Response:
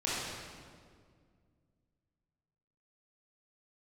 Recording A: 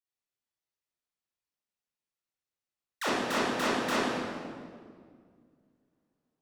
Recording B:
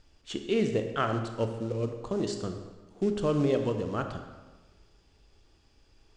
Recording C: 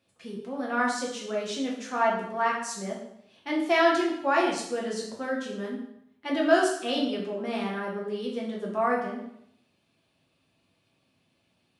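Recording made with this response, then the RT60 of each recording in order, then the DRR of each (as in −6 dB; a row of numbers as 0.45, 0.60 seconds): A; 2.0, 1.3, 0.75 seconds; −8.5, 5.5, −3.5 decibels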